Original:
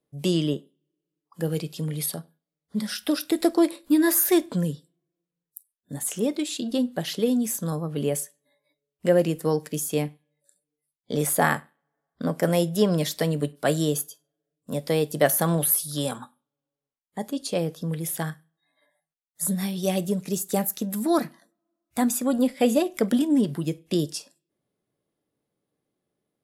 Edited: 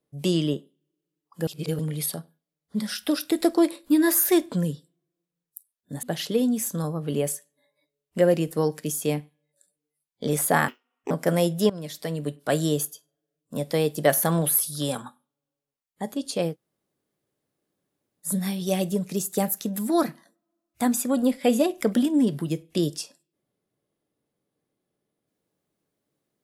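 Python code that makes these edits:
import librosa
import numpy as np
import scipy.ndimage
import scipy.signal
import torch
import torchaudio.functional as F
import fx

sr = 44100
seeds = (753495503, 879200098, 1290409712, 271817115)

y = fx.edit(x, sr, fx.reverse_span(start_s=1.47, length_s=0.32),
    fx.cut(start_s=6.03, length_s=0.88),
    fx.speed_span(start_s=11.56, length_s=0.71, speed=1.66),
    fx.fade_in_from(start_s=12.86, length_s=0.92, floor_db=-16.0),
    fx.room_tone_fill(start_s=17.68, length_s=1.75, crossfade_s=0.1), tone=tone)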